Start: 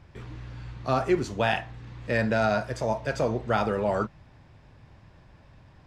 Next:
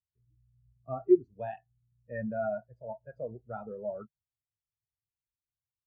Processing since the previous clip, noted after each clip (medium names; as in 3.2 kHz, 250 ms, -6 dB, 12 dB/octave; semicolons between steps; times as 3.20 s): spectral contrast expander 2.5:1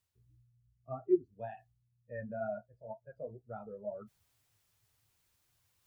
reverse; upward compressor, threshold -49 dBFS; reverse; flange 2 Hz, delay 8 ms, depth 3.9 ms, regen -32%; trim -1.5 dB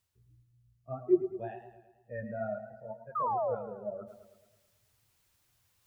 dynamic bell 980 Hz, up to -6 dB, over -56 dBFS, Q 2.4; painted sound fall, 3.15–3.55 s, 460–1300 Hz -34 dBFS; modulated delay 109 ms, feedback 54%, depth 71 cents, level -11 dB; trim +3 dB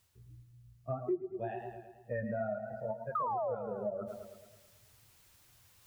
compression 5:1, threshold -42 dBFS, peak gain reduction 20.5 dB; trim +8.5 dB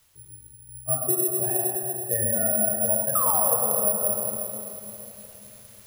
simulated room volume 170 m³, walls hard, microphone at 0.48 m; careless resampling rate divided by 4×, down none, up zero stuff; trim +3.5 dB